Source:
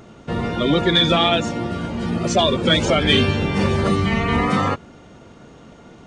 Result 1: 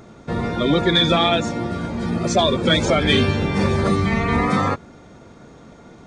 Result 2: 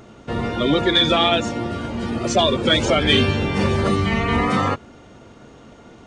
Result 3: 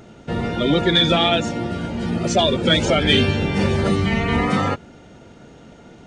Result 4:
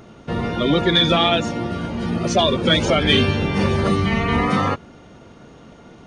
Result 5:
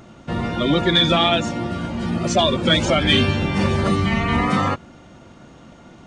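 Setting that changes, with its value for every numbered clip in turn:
notch filter, centre frequency: 2,900, 170, 1,100, 7,600, 440 Hertz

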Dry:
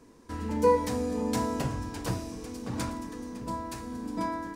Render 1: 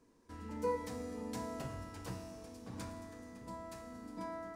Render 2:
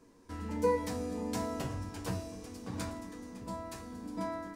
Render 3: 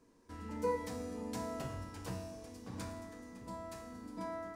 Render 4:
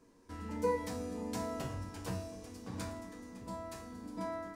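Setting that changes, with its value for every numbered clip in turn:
tuned comb filter, decay: 2.2, 0.16, 1, 0.39 seconds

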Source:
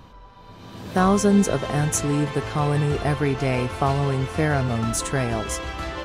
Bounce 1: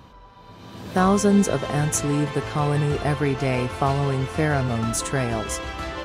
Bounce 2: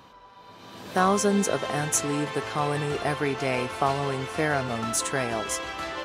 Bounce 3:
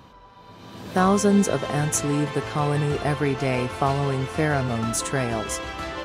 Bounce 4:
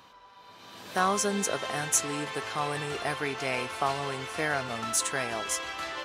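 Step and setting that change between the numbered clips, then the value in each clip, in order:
high-pass filter, corner frequency: 45, 430, 120, 1,200 Hertz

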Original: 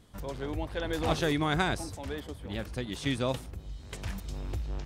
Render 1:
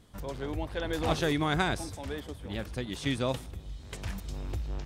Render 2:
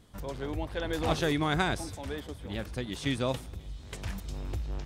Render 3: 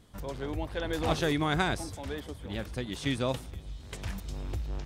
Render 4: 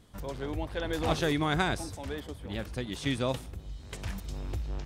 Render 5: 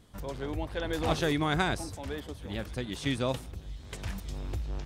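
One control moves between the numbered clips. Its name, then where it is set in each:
delay with a high-pass on its return, delay time: 158, 268, 464, 63, 1,195 milliseconds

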